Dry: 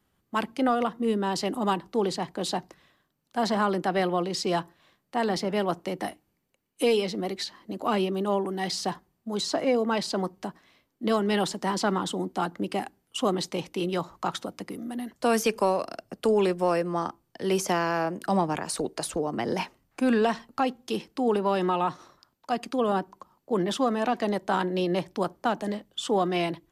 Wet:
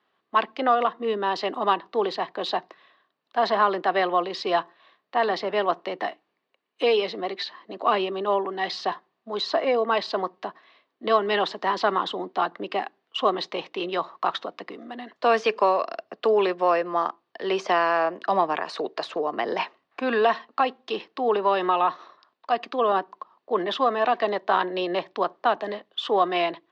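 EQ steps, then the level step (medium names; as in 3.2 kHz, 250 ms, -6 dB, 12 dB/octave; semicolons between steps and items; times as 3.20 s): cabinet simulation 350–4500 Hz, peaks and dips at 420 Hz +4 dB, 670 Hz +6 dB, 1.1 kHz +9 dB, 1.8 kHz +6 dB, 2.7 kHz +4 dB, 3.8 kHz +5 dB; 0.0 dB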